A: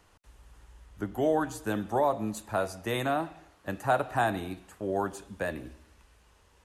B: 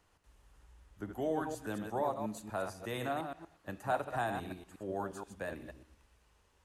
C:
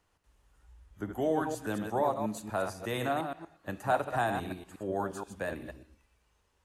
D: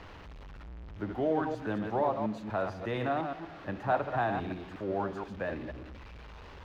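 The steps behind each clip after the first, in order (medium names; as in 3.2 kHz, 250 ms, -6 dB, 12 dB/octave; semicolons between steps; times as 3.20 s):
chunks repeated in reverse 119 ms, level -6 dB; trim -8.5 dB
spectral noise reduction 8 dB; trim +5 dB
jump at every zero crossing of -40.5 dBFS; distance through air 260 m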